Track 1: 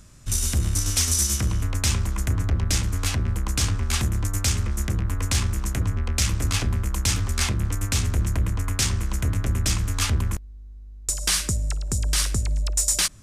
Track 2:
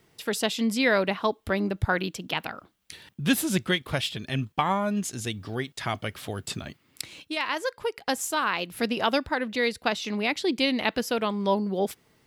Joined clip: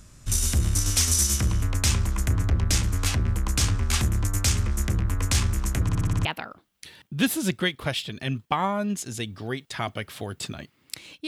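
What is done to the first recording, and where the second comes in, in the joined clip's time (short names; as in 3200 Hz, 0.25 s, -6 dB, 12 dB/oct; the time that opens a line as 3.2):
track 1
5.83 stutter in place 0.06 s, 7 plays
6.25 switch to track 2 from 2.32 s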